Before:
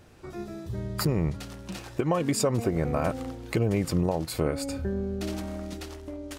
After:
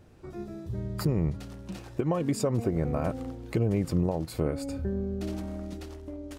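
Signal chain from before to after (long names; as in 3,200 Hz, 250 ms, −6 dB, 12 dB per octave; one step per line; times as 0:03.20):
tilt shelving filter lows +4 dB, about 720 Hz
level −4 dB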